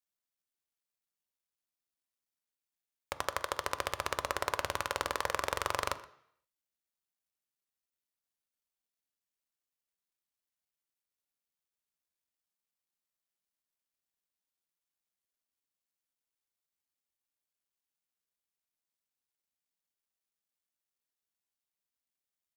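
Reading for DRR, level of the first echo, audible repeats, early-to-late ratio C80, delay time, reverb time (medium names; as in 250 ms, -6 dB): 11.0 dB, -20.5 dB, 1, 17.0 dB, 123 ms, 0.65 s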